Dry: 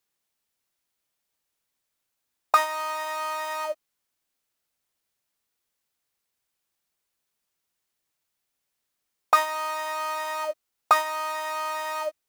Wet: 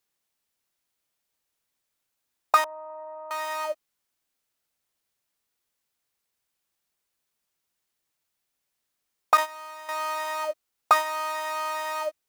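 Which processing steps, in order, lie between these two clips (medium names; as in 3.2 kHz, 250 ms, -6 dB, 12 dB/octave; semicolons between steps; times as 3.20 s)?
2.64–3.31 s: four-pole ladder low-pass 870 Hz, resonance 45%; 9.37–9.89 s: gate -26 dBFS, range -11 dB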